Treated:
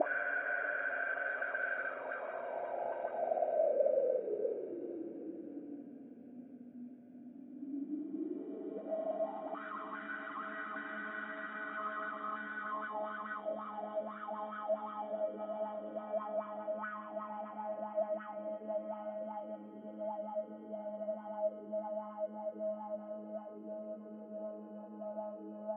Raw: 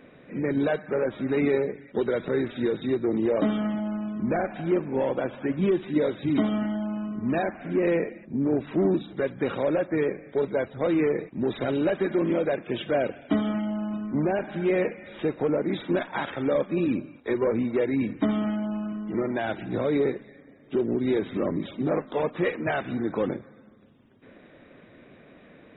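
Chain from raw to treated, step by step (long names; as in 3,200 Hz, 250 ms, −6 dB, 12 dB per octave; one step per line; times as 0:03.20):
extreme stretch with random phases 29×, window 0.25 s, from 0:12.96
envelope filter 210–1,500 Hz, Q 8.9, up, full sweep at −20 dBFS
level +4 dB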